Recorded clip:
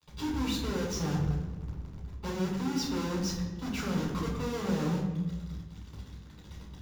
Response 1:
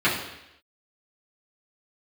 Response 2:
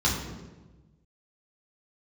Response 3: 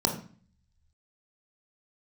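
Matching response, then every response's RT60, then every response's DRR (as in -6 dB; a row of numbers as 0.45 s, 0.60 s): 2; 0.85 s, 1.2 s, 0.45 s; -10.5 dB, -5.0 dB, 2.0 dB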